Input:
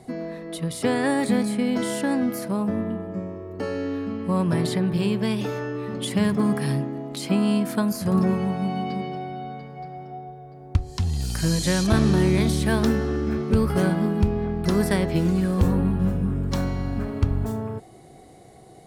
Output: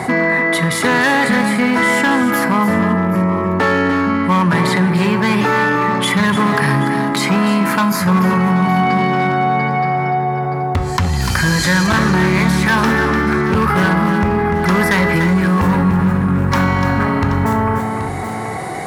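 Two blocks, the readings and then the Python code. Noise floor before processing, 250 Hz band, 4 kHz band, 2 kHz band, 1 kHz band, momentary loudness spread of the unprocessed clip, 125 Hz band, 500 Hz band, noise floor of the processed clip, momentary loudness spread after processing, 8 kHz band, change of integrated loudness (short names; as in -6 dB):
-47 dBFS, +8.0 dB, +10.5 dB, +19.0 dB, +17.0 dB, 12 LU, +7.5 dB, +7.5 dB, -21 dBFS, 4 LU, +8.0 dB, +9.0 dB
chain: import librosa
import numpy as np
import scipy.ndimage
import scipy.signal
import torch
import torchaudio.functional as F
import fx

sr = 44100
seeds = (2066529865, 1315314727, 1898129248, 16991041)

p1 = fx.rider(x, sr, range_db=10, speed_s=0.5)
p2 = x + F.gain(torch.from_numpy(p1), 2.0).numpy()
p3 = fx.band_shelf(p2, sr, hz=1400.0, db=12.5, octaves=1.7)
p4 = np.clip(p3, -10.0 ** (-9.5 / 20.0), 10.0 ** (-9.5 / 20.0))
p5 = fx.dynamic_eq(p4, sr, hz=8800.0, q=6.4, threshold_db=-49.0, ratio=4.0, max_db=-6)
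p6 = scipy.signal.sosfilt(scipy.signal.butter(2, 77.0, 'highpass', fs=sr, output='sos'), p5)
p7 = fx.comb_fb(p6, sr, f0_hz=180.0, decay_s=0.65, harmonics='odd', damping=0.0, mix_pct=70)
p8 = p7 + fx.echo_multitap(p7, sr, ms=(295, 779), db=(-9.5, -17.0), dry=0)
p9 = fx.env_flatten(p8, sr, amount_pct=50)
y = F.gain(torch.from_numpy(p9), 7.0).numpy()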